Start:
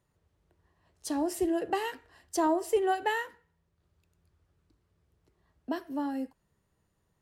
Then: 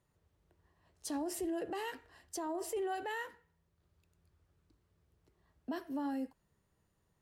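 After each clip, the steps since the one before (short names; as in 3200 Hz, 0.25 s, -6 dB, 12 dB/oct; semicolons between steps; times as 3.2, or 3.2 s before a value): limiter -29 dBFS, peak gain reduction 12 dB; gain -2 dB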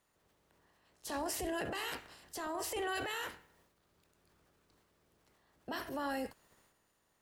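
spectral limiter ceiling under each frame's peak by 18 dB; transient shaper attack -3 dB, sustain +8 dB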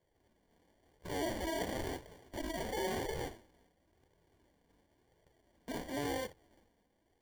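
sample-and-hold 34×; flange 0.96 Hz, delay 1.8 ms, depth 2.7 ms, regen -33%; gain +4.5 dB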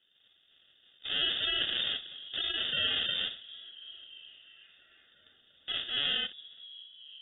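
delay with a stepping band-pass 0.345 s, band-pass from 160 Hz, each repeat 0.7 oct, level -11 dB; inverted band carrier 3600 Hz; gain +6 dB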